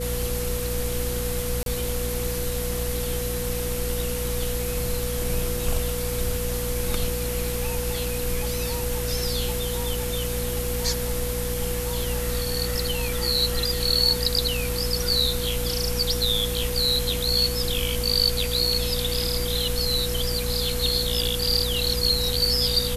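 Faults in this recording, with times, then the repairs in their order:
hum 60 Hz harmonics 4 -30 dBFS
whine 490 Hz -30 dBFS
1.63–1.66 s: dropout 32 ms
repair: band-stop 490 Hz, Q 30; de-hum 60 Hz, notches 4; interpolate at 1.63 s, 32 ms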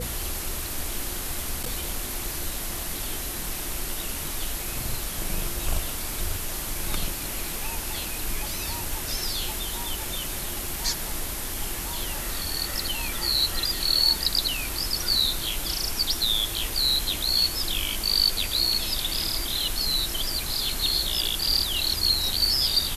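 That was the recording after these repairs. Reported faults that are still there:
nothing left

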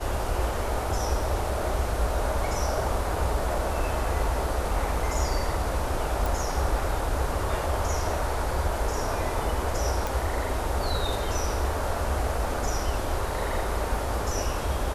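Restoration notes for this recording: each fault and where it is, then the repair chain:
6.26 s: pop
10.07 s: pop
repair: de-click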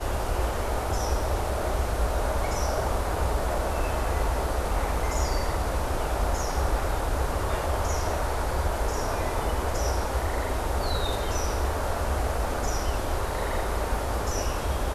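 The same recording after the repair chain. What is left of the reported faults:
nothing left

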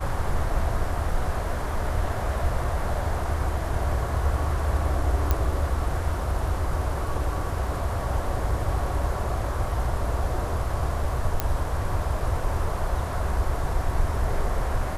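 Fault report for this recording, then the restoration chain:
5.31 s: pop -9 dBFS
11.40 s: pop -8 dBFS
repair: de-click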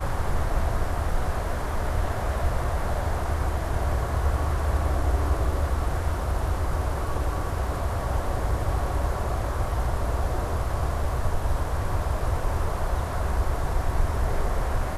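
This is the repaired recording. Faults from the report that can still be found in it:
nothing left

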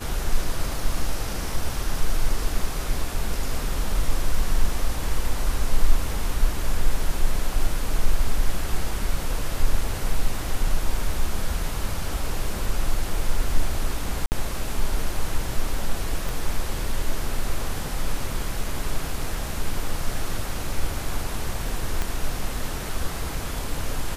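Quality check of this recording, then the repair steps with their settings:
14.26–14.32 s: dropout 59 ms
16.29 s: pop
22.02 s: pop -11 dBFS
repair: de-click; interpolate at 14.26 s, 59 ms

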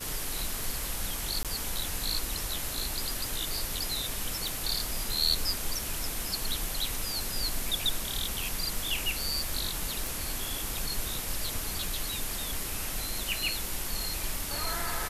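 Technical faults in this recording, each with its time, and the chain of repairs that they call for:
1.43–1.45 s: dropout 17 ms
4.48 s: pop
10.07 s: pop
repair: de-click; interpolate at 1.43 s, 17 ms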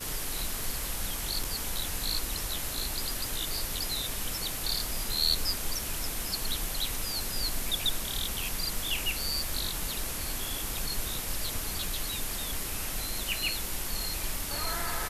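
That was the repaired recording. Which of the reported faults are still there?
nothing left

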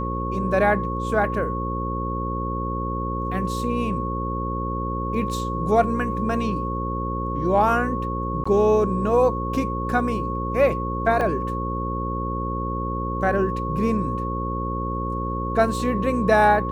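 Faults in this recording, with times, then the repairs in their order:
buzz 60 Hz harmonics 9 -28 dBFS
whine 1.1 kHz -28 dBFS
8.44–8.46 s: dropout 15 ms
11.21 s: dropout 3.5 ms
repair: de-hum 60 Hz, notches 9; band-stop 1.1 kHz, Q 30; interpolate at 8.44 s, 15 ms; interpolate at 11.21 s, 3.5 ms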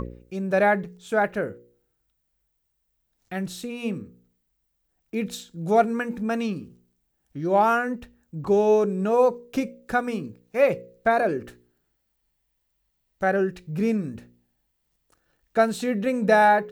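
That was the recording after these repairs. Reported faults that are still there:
nothing left

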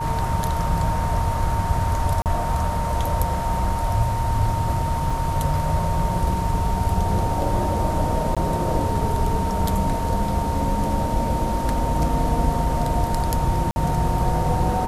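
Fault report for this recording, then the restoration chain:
whine 920 Hz -26 dBFS
2.22–2.26 s: dropout 38 ms
5.10 s: dropout 3.3 ms
8.35–8.37 s: dropout 16 ms
13.71–13.76 s: dropout 50 ms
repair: band-stop 920 Hz, Q 30; interpolate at 2.22 s, 38 ms; interpolate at 5.10 s, 3.3 ms; interpolate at 8.35 s, 16 ms; interpolate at 13.71 s, 50 ms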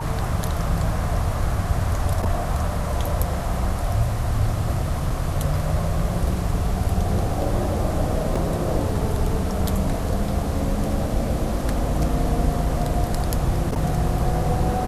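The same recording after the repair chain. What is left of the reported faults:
nothing left

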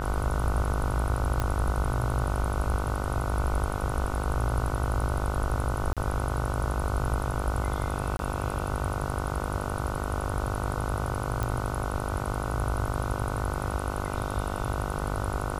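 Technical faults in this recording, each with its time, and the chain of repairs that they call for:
buzz 50 Hz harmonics 30 -33 dBFS
1.40 s: pop -14 dBFS
5.93–5.97 s: dropout 37 ms
8.17–8.19 s: dropout 22 ms
11.43 s: pop -15 dBFS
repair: de-click; de-hum 50 Hz, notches 30; interpolate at 5.93 s, 37 ms; interpolate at 8.17 s, 22 ms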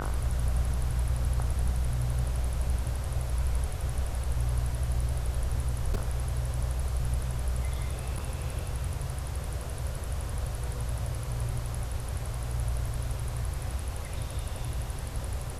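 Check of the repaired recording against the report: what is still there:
11.43 s: pop

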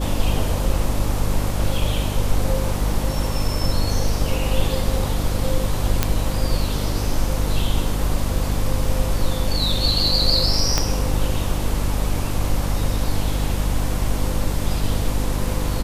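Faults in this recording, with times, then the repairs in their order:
hum 50 Hz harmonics 6 -24 dBFS
6.03 s: pop -2 dBFS
10.78 s: pop -3 dBFS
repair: de-click; de-hum 50 Hz, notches 6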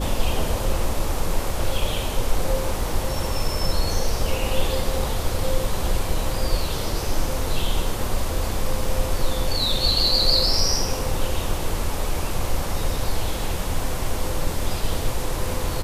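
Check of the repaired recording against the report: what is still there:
10.78 s: pop

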